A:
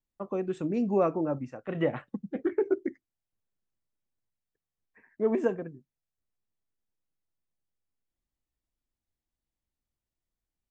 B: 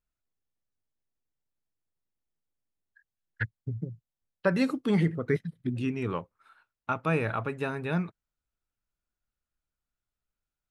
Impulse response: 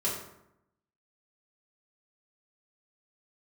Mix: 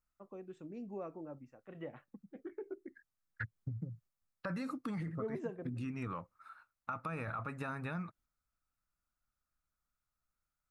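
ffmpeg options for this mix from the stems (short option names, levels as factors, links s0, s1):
-filter_complex "[0:a]volume=0.841[s0];[1:a]equalizer=f=400:t=o:w=0.33:g=-11,equalizer=f=1250:t=o:w=0.33:g=9,equalizer=f=3150:t=o:w=0.33:g=-10,alimiter=limit=0.0631:level=0:latency=1:release=10,volume=0.891,asplit=2[s1][s2];[s2]apad=whole_len=472008[s3];[s0][s3]sidechaingate=range=0.158:threshold=0.00112:ratio=16:detection=peak[s4];[s4][s1]amix=inputs=2:normalize=0,acompressor=threshold=0.0141:ratio=6"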